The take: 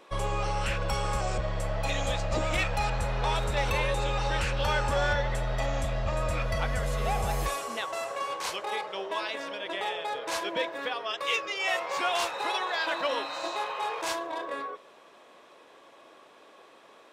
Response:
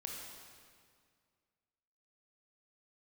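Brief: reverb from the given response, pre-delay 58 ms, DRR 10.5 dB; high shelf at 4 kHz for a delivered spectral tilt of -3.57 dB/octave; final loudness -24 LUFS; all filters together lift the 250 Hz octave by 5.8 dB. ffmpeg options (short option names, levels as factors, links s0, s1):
-filter_complex "[0:a]equalizer=f=250:t=o:g=8.5,highshelf=f=4000:g=8.5,asplit=2[s0][s1];[1:a]atrim=start_sample=2205,adelay=58[s2];[s1][s2]afir=irnorm=-1:irlink=0,volume=0.355[s3];[s0][s3]amix=inputs=2:normalize=0,volume=1.58"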